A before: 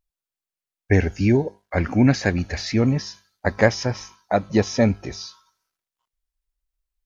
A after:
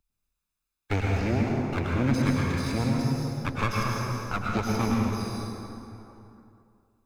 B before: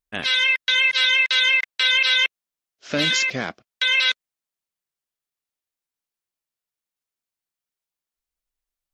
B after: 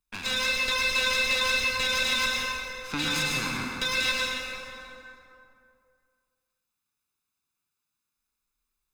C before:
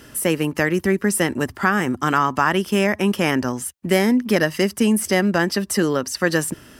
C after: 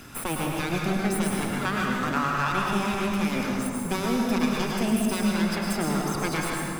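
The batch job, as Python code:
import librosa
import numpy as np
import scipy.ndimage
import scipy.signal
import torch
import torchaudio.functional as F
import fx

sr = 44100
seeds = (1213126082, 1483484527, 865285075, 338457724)

y = fx.lower_of_two(x, sr, delay_ms=0.8)
y = fx.rev_plate(y, sr, seeds[0], rt60_s=2.1, hf_ratio=0.6, predelay_ms=90, drr_db=-2.5)
y = fx.band_squash(y, sr, depth_pct=40)
y = y * 10.0 ** (-9.0 / 20.0)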